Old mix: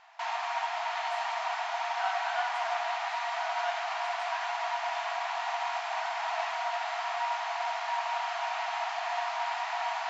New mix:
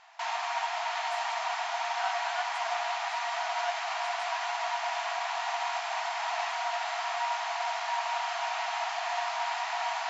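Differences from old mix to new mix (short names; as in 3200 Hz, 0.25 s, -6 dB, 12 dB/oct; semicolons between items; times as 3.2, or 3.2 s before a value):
speech: send -10.0 dB; master: add high shelf 5200 Hz +9 dB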